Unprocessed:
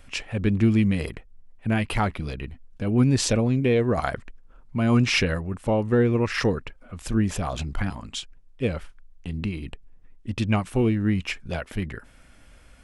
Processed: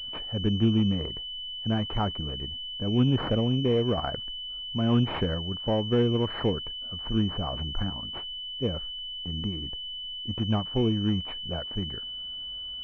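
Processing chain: class-D stage that switches slowly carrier 3 kHz; trim -3.5 dB

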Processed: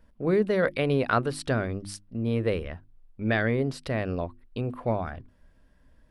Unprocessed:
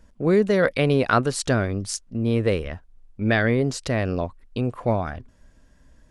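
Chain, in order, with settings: peaking EQ 6.7 kHz -13.5 dB 0.59 oct; hum notches 50/100/150/200/250/300/350 Hz; trim -4.5 dB

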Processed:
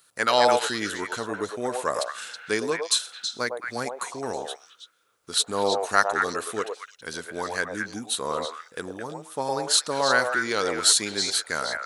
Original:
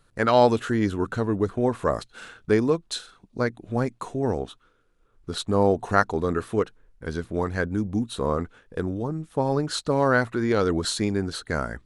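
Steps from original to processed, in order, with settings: high-pass 83 Hz; tilt EQ +4.5 dB/octave; on a send: repeats whose band climbs or falls 108 ms, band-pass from 660 Hz, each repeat 1.4 oct, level 0 dB; on the sum: trim -1 dB

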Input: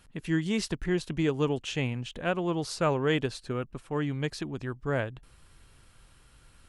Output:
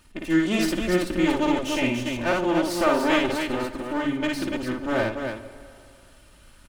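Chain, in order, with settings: comb filter that takes the minimum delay 3.3 ms; loudspeakers at several distances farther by 19 m -2 dB, 100 m -5 dB; plate-style reverb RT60 2.4 s, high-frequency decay 0.8×, DRR 12 dB; trim +3.5 dB

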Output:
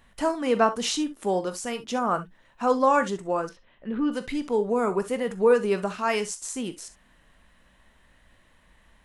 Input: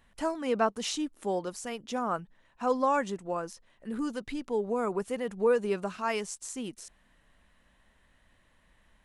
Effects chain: 3.49–4.12 s: Chebyshev low-pass 3.2 kHz, order 3; on a send: reverberation, pre-delay 17 ms, DRR 9.5 dB; on the sum: trim +5.5 dB

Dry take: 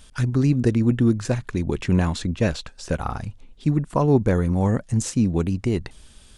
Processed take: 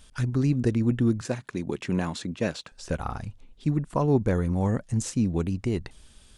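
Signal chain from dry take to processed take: 1.21–2.72 s: high-pass 160 Hz 12 dB/octave; trim -4.5 dB

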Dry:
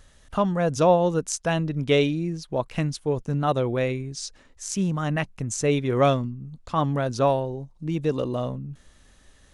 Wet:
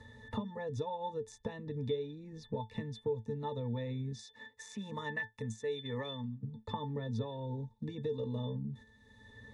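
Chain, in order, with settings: 4.19–6.43 s: tilt EQ +4 dB/octave; compression 6:1, threshold -29 dBFS, peak gain reduction 15 dB; treble shelf 4.2 kHz +10 dB; gate -46 dBFS, range -10 dB; pitch-class resonator A, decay 0.14 s; three bands compressed up and down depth 70%; trim +7 dB

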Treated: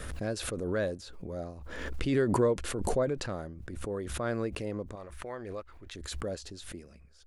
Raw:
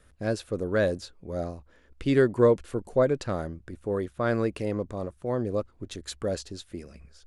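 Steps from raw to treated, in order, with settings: 4.95–5.95 s: graphic EQ 125/250/500/2000/8000 Hz -11/-8/-4/+8/-4 dB; swell ahead of each attack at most 35 dB/s; trim -7 dB

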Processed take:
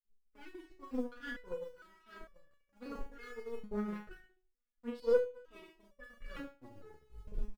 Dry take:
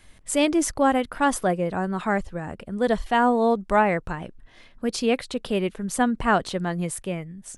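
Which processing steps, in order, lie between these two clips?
tape stop on the ending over 1.43 s; bass shelf 64 Hz +11 dB; low-pass that closes with the level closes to 2.1 kHz, closed at -19.5 dBFS; brick-wall FIR band-stop 550–1200 Hz; LFO low-pass saw up 1.4 Hz 330–4800 Hz; in parallel at -9.5 dB: small samples zeroed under -23.5 dBFS; on the sum: flange 1.3 Hz, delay 5.5 ms, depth 3.7 ms, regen -34%; doubling 39 ms -3.5 dB; feedback delay 73 ms, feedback 34%, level -8.5 dB; on a send at -22 dB: reverberation RT60 0.65 s, pre-delay 85 ms; on the sum: power-law waveshaper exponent 2; resonator arpeggio 2.2 Hz 210–570 Hz; trim +5 dB

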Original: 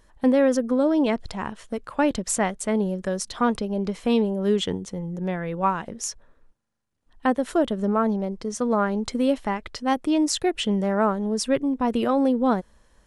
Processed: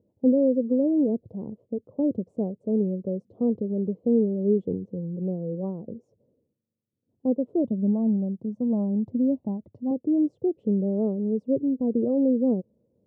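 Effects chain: rattle on loud lows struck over -28 dBFS, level -22 dBFS; 7.64–9.91 s: comb 1.1 ms, depth 67%; elliptic band-pass 100–510 Hz, stop band 50 dB

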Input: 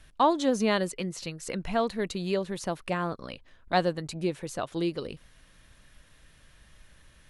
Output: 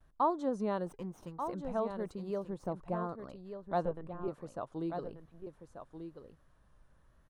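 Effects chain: 0.86–1.50 s: comb filter that takes the minimum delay 0.33 ms; resonant high shelf 1.6 kHz -12 dB, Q 1.5; vibrato 1 Hz 61 cents; 2.44–3.04 s: tilt shelf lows +4 dB, about 870 Hz; 3.85–4.28 s: LPC vocoder at 8 kHz pitch kept; delay 1187 ms -8.5 dB; trim -9 dB

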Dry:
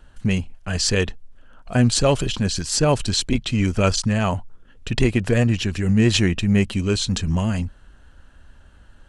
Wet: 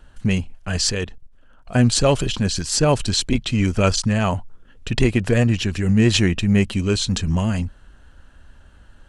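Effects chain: 0.91–1.74 s: level held to a coarse grid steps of 12 dB; trim +1 dB

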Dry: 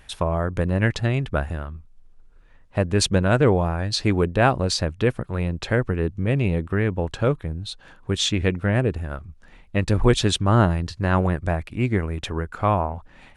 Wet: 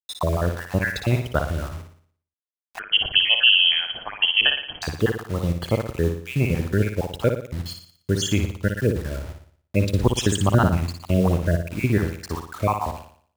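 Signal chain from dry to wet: random holes in the spectrogram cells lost 58%; high-pass 46 Hz 24 dB/octave; band-stop 1.9 kHz, Q 22; bit crusher 7-bit; flutter echo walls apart 10 m, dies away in 0.53 s; 2.79–4.82 s: frequency inversion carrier 3.2 kHz; trim +2 dB

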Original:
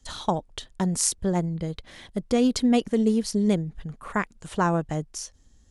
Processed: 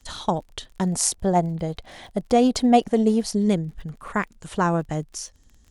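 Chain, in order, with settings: 0.92–3.34 s: peaking EQ 730 Hz +11.5 dB 0.65 oct; crackle 33 per s -42 dBFS; trim +1.5 dB

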